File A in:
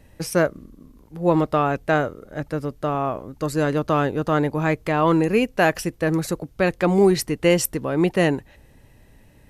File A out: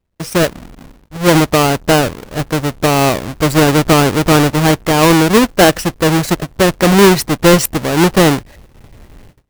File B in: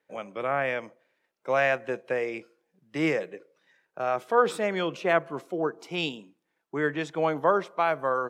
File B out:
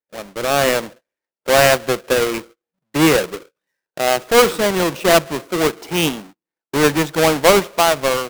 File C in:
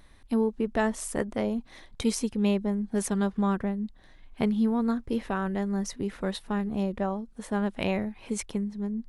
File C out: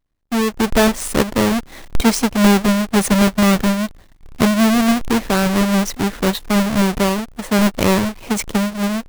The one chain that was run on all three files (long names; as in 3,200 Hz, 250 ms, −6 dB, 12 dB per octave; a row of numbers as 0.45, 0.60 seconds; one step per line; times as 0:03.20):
each half-wave held at its own peak
automatic gain control gain up to 8.5 dB
noise gate −39 dBFS, range −25 dB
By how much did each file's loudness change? +9.5, +11.5, +12.5 LU